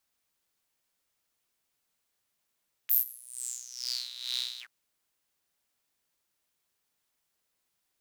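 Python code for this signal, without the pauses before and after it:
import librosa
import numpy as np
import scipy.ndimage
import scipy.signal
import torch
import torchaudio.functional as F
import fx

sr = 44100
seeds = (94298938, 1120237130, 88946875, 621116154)

y = fx.sub_patch_tremolo(sr, seeds[0], note=47, wave='saw', wave2='saw', interval_st=0, detune_cents=29, level2_db=-9.0, sub_db=-15.0, noise_db=-30.0, kind='highpass', cutoff_hz=1300.0, q=10.0, env_oct=3.5, env_decay_s=1.2, env_sustain_pct=45, attack_ms=24.0, decay_s=0.13, sustain_db=-23, release_s=0.07, note_s=1.71, lfo_hz=2.2, tremolo_db=12.5)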